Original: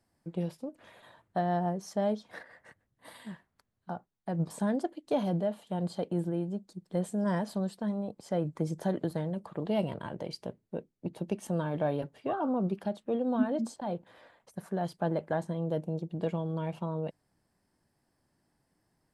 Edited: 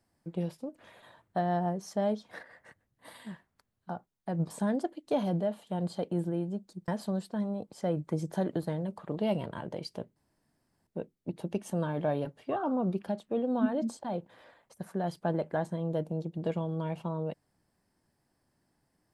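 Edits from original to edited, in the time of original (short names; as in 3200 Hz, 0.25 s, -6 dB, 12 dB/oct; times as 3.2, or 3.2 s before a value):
6.88–7.36 cut
10.64 insert room tone 0.71 s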